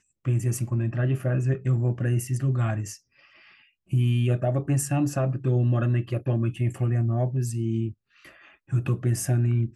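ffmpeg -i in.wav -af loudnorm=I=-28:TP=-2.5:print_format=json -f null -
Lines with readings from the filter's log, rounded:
"input_i" : "-25.7",
"input_tp" : "-12.3",
"input_lra" : "2.3",
"input_thresh" : "-36.4",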